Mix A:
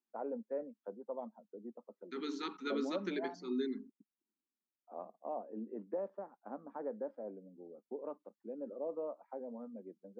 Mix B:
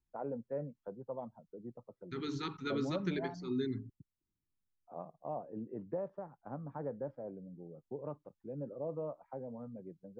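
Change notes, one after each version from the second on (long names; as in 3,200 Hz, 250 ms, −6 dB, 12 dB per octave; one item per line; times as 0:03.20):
master: remove elliptic high-pass filter 210 Hz, stop band 40 dB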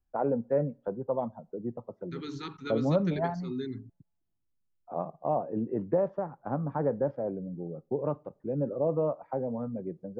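first voice +10.5 dB
reverb: on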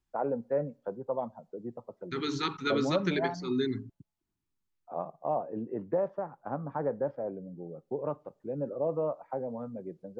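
second voice +10.0 dB
master: add low-shelf EQ 340 Hz −8 dB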